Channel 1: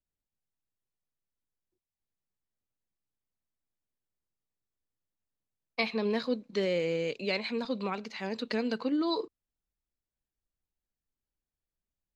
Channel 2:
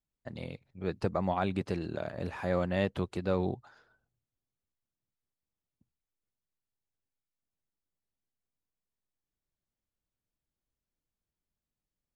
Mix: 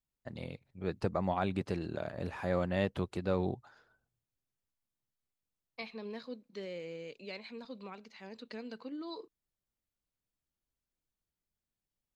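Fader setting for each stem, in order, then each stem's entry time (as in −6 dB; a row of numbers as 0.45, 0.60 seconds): −13.0, −2.0 decibels; 0.00, 0.00 seconds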